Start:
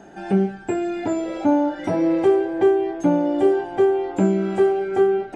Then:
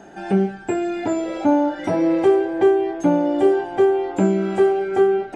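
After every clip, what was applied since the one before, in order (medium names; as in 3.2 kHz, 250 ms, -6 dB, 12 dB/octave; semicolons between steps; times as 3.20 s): bass shelf 340 Hz -3 dB; trim +2.5 dB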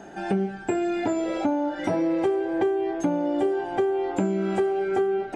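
compression, threshold -21 dBFS, peak gain reduction 10 dB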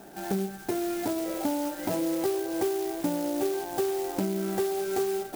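sampling jitter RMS 0.08 ms; trim -4.5 dB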